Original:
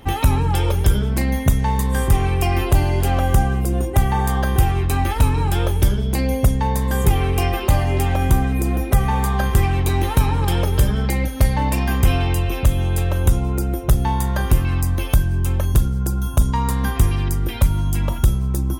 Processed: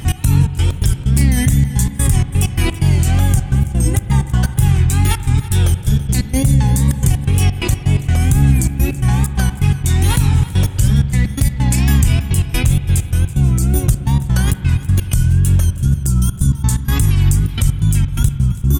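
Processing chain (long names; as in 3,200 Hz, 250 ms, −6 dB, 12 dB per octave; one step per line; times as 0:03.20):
graphic EQ with 10 bands 125 Hz +10 dB, 500 Hz −10 dB, 1,000 Hz −7 dB, 8,000 Hz +12 dB
in parallel at +2 dB: compressor whose output falls as the input rises −22 dBFS, ratio −1
on the sum: brickwall limiter −3 dBFS, peak gain reduction 7 dB
gate pattern "x.xx.x.x.xxxxx." 128 BPM −24 dB
tape wow and flutter 110 cents
on a send: repeating echo 330 ms, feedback 25%, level −17 dB
on the sum: spring reverb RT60 3.4 s, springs 43/58 ms, chirp 50 ms, DRR 11.5 dB
level −1 dB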